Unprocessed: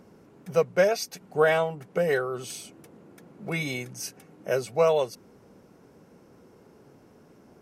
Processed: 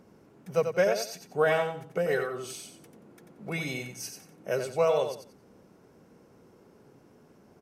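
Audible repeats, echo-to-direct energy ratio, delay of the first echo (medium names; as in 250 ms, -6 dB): 3, -6.5 dB, 90 ms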